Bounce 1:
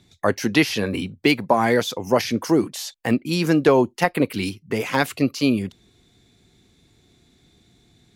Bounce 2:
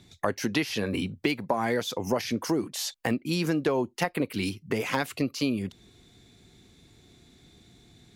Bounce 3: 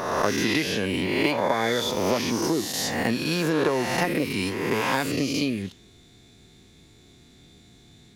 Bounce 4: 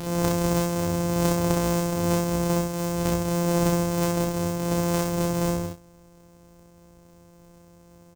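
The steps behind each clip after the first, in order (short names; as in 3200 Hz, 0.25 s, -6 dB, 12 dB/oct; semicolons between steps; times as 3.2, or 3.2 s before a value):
compressor 3:1, threshold -28 dBFS, peak gain reduction 13 dB; gain +1.5 dB
spectral swells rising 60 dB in 1.43 s; on a send at -10 dB: HPF 1200 Hz + reverb RT60 0.45 s, pre-delay 3 ms
sample sorter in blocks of 256 samples; bell 1800 Hz -9 dB 1.6 oct; on a send: early reflections 31 ms -4.5 dB, 64 ms -3 dB; on the sum: gain -2 dB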